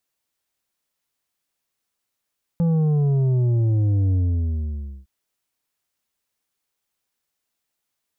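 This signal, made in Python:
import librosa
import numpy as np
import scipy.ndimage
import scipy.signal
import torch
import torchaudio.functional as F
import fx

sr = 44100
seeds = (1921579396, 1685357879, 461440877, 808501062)

y = fx.sub_drop(sr, level_db=-17.0, start_hz=170.0, length_s=2.46, drive_db=7, fade_s=0.93, end_hz=65.0)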